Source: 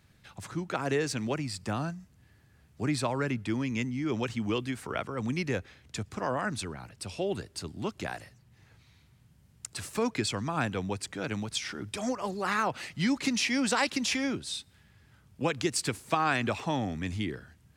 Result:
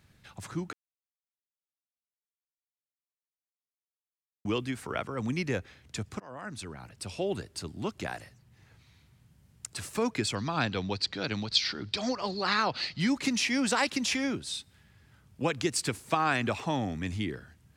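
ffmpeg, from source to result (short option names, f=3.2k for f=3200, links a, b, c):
-filter_complex "[0:a]asettb=1/sr,asplit=3[a][b][c];[a]atrim=end=10.354[d];[b]atrim=start=10.35:end=13,asetpts=PTS-STARTPTS,afade=t=in:d=0.004:c=qsin,afade=t=out:st=2.646:d=0.004:c=qsin,lowpass=f=4.4k:t=q:w=6.3[e];[c]atrim=start=12.996[f];[d][e]acrossfade=d=0.004:c1=hsin:c2=qsin[g];[g][f]acrossfade=d=0.004:c1=qsin:c2=hsin,asplit=4[h][i][j][k];[h]atrim=end=0.73,asetpts=PTS-STARTPTS,afade=t=out:st=0.726:d=0.004:c=hsin[l];[i]atrim=start=0.73:end=4.45,asetpts=PTS-STARTPTS,volume=0[m];[j]atrim=start=4.45:end=6.2,asetpts=PTS-STARTPTS,afade=t=in:d=0.004:c=hsin,afade=t=out:st=1.746:d=0.004:c=hsin:silence=0.0630957[n];[k]atrim=start=6.2,asetpts=PTS-STARTPTS,afade=t=in:d=0.77:silence=0.0630957[o];[l][m][n][o]concat=n=4:v=0:a=1"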